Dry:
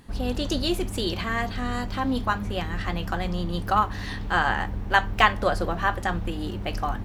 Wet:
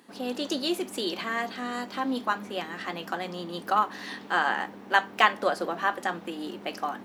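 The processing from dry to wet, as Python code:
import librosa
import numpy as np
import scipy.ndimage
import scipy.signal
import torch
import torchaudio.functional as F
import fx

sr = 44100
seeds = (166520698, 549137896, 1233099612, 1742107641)

y = scipy.signal.sosfilt(scipy.signal.butter(4, 230.0, 'highpass', fs=sr, output='sos'), x)
y = F.gain(torch.from_numpy(y), -2.0).numpy()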